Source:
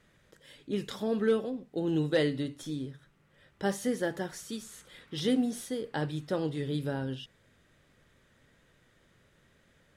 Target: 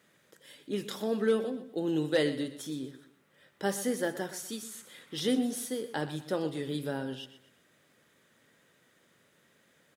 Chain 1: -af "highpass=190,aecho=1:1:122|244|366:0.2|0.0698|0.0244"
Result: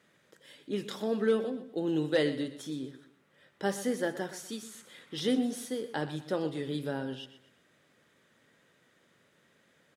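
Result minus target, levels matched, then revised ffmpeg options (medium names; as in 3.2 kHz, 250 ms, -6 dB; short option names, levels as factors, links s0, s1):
8 kHz band -4.0 dB
-af "highpass=190,highshelf=f=9700:g=11,aecho=1:1:122|244|366:0.2|0.0698|0.0244"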